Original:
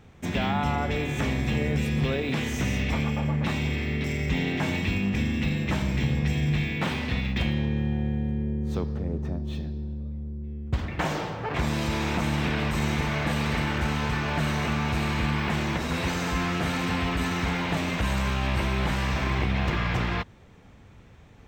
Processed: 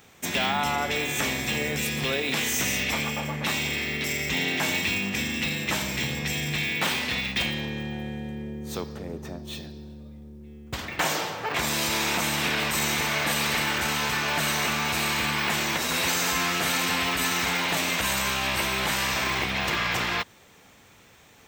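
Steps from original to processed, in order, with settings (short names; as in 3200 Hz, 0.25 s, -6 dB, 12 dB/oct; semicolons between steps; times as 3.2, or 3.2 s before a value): RIAA curve recording; gain +2.5 dB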